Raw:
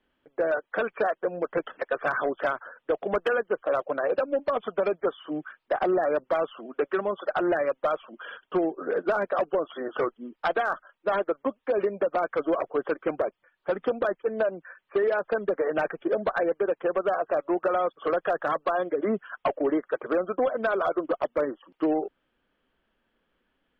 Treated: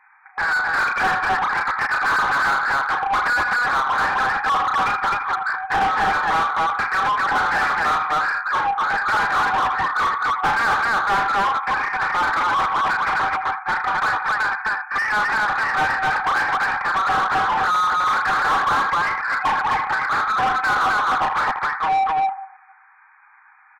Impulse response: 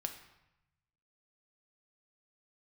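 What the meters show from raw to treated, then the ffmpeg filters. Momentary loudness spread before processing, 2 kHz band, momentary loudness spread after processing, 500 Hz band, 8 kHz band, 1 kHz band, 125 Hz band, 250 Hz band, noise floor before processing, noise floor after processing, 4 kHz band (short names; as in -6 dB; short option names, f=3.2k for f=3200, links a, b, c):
6 LU, +15.5 dB, 3 LU, -9.5 dB, n/a, +14.0 dB, +8.5 dB, -6.0 dB, -77 dBFS, -51 dBFS, +17.0 dB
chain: -filter_complex "[0:a]asplit=2[a][b];[1:a]atrim=start_sample=2205,adelay=80[c];[b][c]afir=irnorm=-1:irlink=0,volume=-13dB[d];[a][d]amix=inputs=2:normalize=0,afftfilt=real='re*between(b*sr/4096,750,2500)':imag='im*between(b*sr/4096,750,2500)':win_size=4096:overlap=0.75,aecho=1:1:34.99|259.5:0.501|0.708,asplit=2[e][f];[f]highpass=f=720:p=1,volume=30dB,asoftclip=type=tanh:threshold=-14.5dB[g];[e][g]amix=inputs=2:normalize=0,lowpass=f=1.4k:p=1,volume=-6dB,volume=4.5dB"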